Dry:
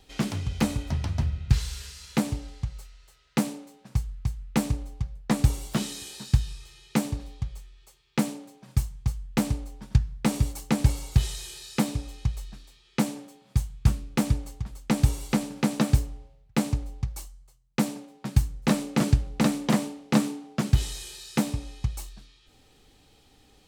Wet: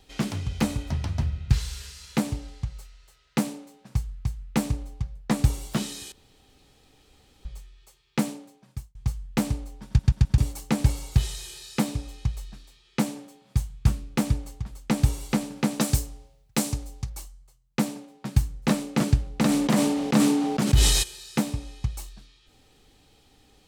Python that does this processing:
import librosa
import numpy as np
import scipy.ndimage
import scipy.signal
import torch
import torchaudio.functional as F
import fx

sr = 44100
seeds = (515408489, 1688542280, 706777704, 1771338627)

y = fx.bass_treble(x, sr, bass_db=-3, treble_db=10, at=(15.8, 17.1))
y = fx.sustainer(y, sr, db_per_s=30.0, at=(19.47, 21.02), fade=0.02)
y = fx.edit(y, sr, fx.room_tone_fill(start_s=6.12, length_s=1.33),
    fx.fade_out_span(start_s=8.3, length_s=0.65),
    fx.stutter_over(start_s=9.86, slice_s=0.13, count=4), tone=tone)